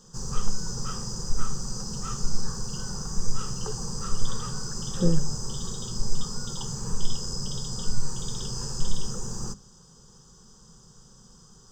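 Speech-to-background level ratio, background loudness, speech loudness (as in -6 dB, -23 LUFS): 5.0 dB, -33.5 LUFS, -28.5 LUFS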